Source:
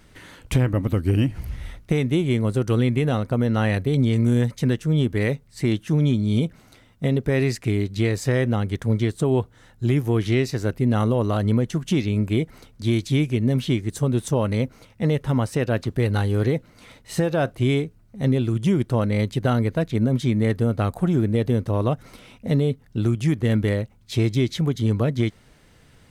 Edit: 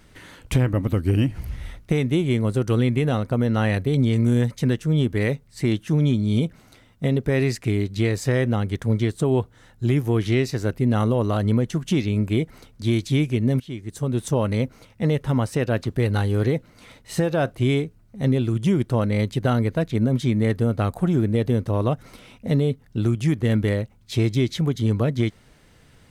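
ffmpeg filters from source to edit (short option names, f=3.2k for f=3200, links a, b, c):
-filter_complex "[0:a]asplit=2[a][b];[a]atrim=end=13.6,asetpts=PTS-STARTPTS,afade=t=out:st=13.596:d=0.004:c=hsin:silence=0.125893[c];[b]atrim=start=13.6,asetpts=PTS-STARTPTS,afade=t=in:d=0.7:silence=0.125893[d];[c][d]concat=n=2:v=0:a=1"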